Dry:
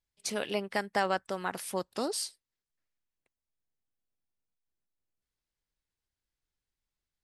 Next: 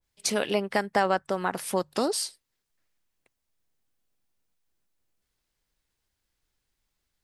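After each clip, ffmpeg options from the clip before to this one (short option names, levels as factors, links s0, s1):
-filter_complex "[0:a]bandreject=f=50:t=h:w=6,bandreject=f=100:t=h:w=6,bandreject=f=150:t=h:w=6,asplit=2[s0][s1];[s1]acompressor=threshold=0.0141:ratio=6,volume=1.12[s2];[s0][s2]amix=inputs=2:normalize=0,adynamicequalizer=threshold=0.00794:dfrequency=1700:dqfactor=0.7:tfrequency=1700:tqfactor=0.7:attack=5:release=100:ratio=0.375:range=3:mode=cutabove:tftype=highshelf,volume=1.5"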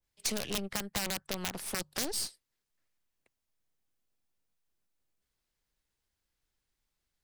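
-filter_complex "[0:a]aeval=exprs='(mod(5.96*val(0)+1,2)-1)/5.96':c=same,aeval=exprs='0.168*(cos(1*acos(clip(val(0)/0.168,-1,1)))-cos(1*PI/2))+0.0168*(cos(8*acos(clip(val(0)/0.168,-1,1)))-cos(8*PI/2))':c=same,acrossover=split=210|3000[s0][s1][s2];[s1]acompressor=threshold=0.0224:ratio=6[s3];[s0][s3][s2]amix=inputs=3:normalize=0,volume=0.596"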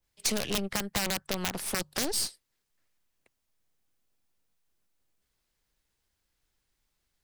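-af "asoftclip=type=tanh:threshold=0.106,volume=1.78"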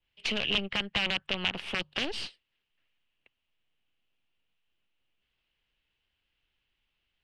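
-af "lowpass=f=2900:t=q:w=5.6,volume=0.708"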